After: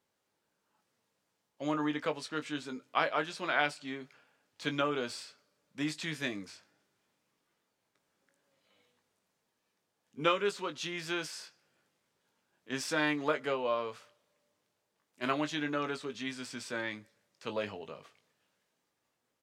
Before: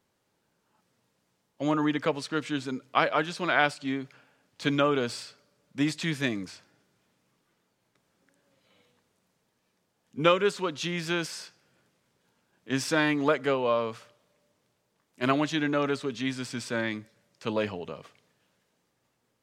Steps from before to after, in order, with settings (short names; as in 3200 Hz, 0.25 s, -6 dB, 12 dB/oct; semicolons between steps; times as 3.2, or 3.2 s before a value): low shelf 250 Hz -8 dB; doubler 20 ms -8.5 dB; gain -5.5 dB